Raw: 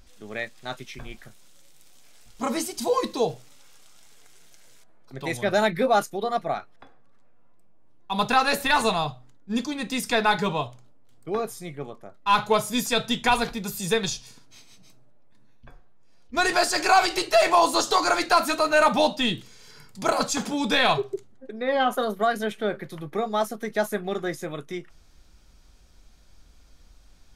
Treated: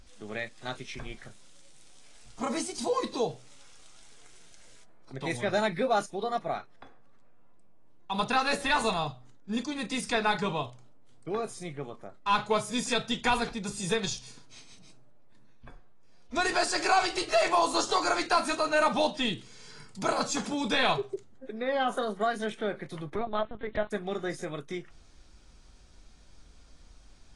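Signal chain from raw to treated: in parallel at +1 dB: compression 5:1, threshold -34 dBFS, peak gain reduction 18 dB; 23.15–23.91 s: on the sum: LPC vocoder at 8 kHz pitch kept; trim -7.5 dB; AAC 32 kbps 22.05 kHz

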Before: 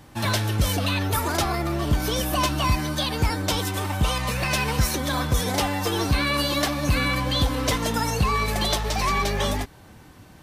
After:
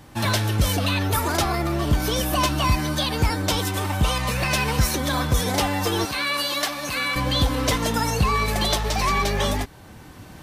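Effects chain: recorder AGC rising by 5.9 dB/s; 6.05–7.16 s: high-pass 850 Hz 6 dB/octave; trim +1.5 dB

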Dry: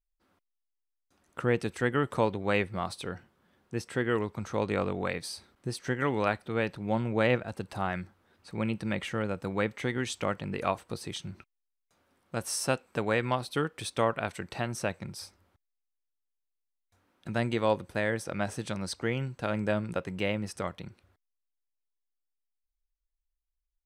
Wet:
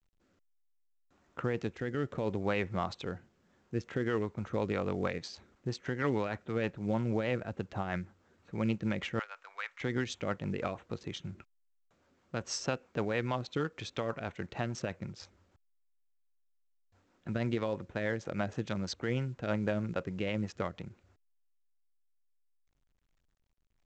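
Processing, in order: local Wiener filter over 9 samples; 9.19–9.81 s: high-pass 990 Hz 24 dB/octave; peak limiter -20.5 dBFS, peak gain reduction 8 dB; rotary cabinet horn 0.65 Hz, later 6.3 Hz, at 3.26 s; trim +1 dB; µ-law 128 kbps 16 kHz

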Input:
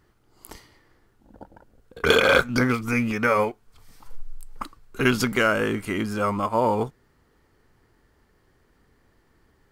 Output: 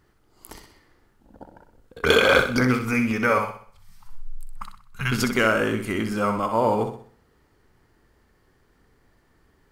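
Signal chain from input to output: 3.38–5.12 s: FFT filter 190 Hz 0 dB, 300 Hz -30 dB, 920 Hz -4 dB; flutter echo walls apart 10.8 m, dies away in 0.49 s

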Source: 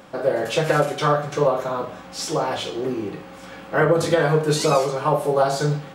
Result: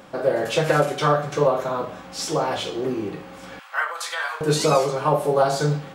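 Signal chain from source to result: 3.59–4.41 s: high-pass 980 Hz 24 dB/octave

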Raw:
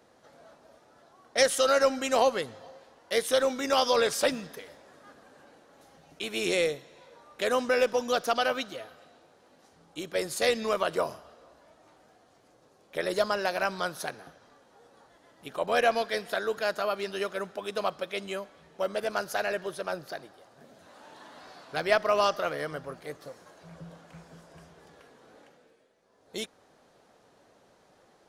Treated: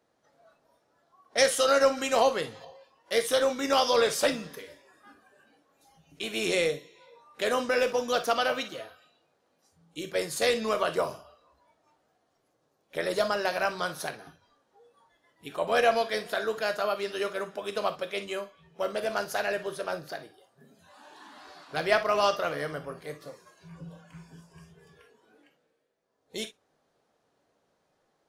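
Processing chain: gated-style reverb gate 80 ms flat, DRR 8 dB; spectral noise reduction 12 dB; 1.97–2.65 s: tape noise reduction on one side only encoder only

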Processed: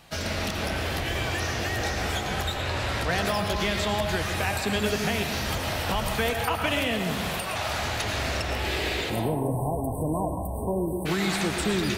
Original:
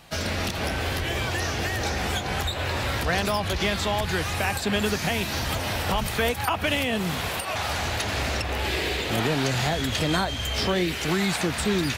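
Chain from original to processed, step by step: 2.52–3.11 s: low-pass 11 kHz 12 dB/octave; 9.10–11.06 s: spectral selection erased 1.1–8 kHz; algorithmic reverb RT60 0.93 s, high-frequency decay 0.55×, pre-delay 70 ms, DRR 4 dB; trim -2.5 dB

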